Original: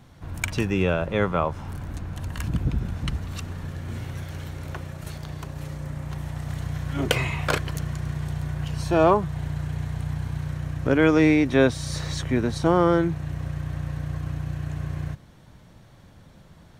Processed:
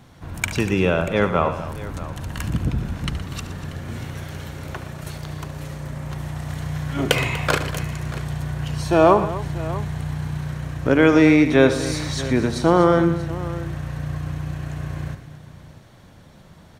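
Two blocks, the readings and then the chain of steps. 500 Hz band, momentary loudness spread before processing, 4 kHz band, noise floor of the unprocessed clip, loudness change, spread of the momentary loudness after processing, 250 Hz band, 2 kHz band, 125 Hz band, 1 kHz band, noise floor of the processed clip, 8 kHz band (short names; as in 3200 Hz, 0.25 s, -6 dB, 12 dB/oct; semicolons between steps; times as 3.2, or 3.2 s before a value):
+4.5 dB, 16 LU, +4.5 dB, -51 dBFS, +4.0 dB, 17 LU, +4.0 dB, +4.5 dB, +2.0 dB, +4.5 dB, -47 dBFS, +4.5 dB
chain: low shelf 95 Hz -5.5 dB; tapped delay 72/119/243/636 ms -13.5/-14/-15.5/-16.5 dB; gain +4 dB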